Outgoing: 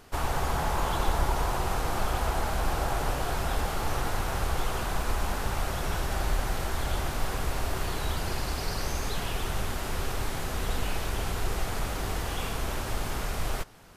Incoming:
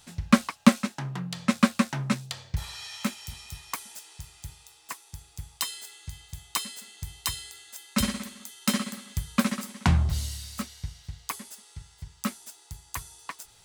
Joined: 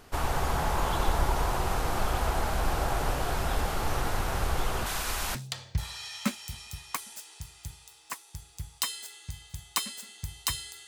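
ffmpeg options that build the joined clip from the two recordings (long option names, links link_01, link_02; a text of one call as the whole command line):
ffmpeg -i cue0.wav -i cue1.wav -filter_complex "[0:a]asettb=1/sr,asplit=3[link_01][link_02][link_03];[link_01]atrim=end=4.864[link_04];[link_02]atrim=start=4.86:end=5.35,asetpts=PTS-STARTPTS,afade=type=in:duration=0.004:curve=qsin,afade=type=out:start_time=0.486:duration=0.004:curve=qsin,tiltshelf=frequency=1300:gain=-7.5[link_05];[link_03]atrim=start=5.346[link_06];[link_04][link_05]acrossfade=duration=0.004:curve1=hsin:curve2=qsin[link_07];[link_07][link_06]acrossfade=duration=0.004:curve1=qsin:curve2=hsin,apad=whole_dur=10.87,atrim=end=10.87,atrim=end=5.352[link_08];[1:a]atrim=start=2.138:end=7.66[link_09];[link_08][link_09]acrossfade=duration=0.004:curve1=hsin:curve2=hsin" out.wav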